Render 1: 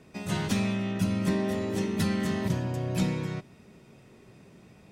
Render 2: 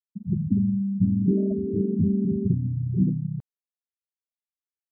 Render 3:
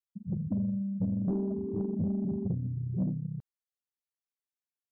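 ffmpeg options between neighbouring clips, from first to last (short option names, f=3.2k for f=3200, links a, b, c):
-af "afftfilt=real='re*gte(hypot(re,im),0.141)':imag='im*gte(hypot(re,im),0.141)':win_size=1024:overlap=0.75,highshelf=f=3.8k:g=-10,areverse,acompressor=mode=upward:threshold=-39dB:ratio=2.5,areverse,volume=6dB"
-af "asoftclip=type=tanh:threshold=-16.5dB,volume=-6.5dB"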